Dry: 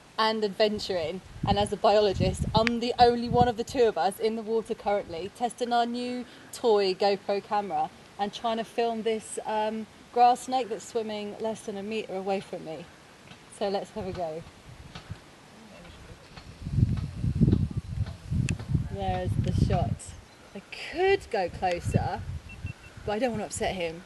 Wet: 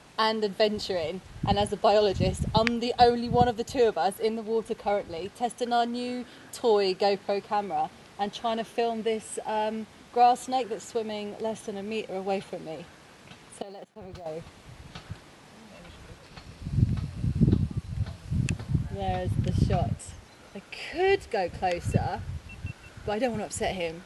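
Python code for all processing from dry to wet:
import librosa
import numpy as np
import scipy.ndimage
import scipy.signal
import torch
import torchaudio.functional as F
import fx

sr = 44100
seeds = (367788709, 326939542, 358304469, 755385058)

y = fx.chain(x, sr, fx.law_mismatch(coded='A'),
    fx.level_steps(step_db=21),
    fx.band_widen(depth_pct=100), at=(13.62, 14.26))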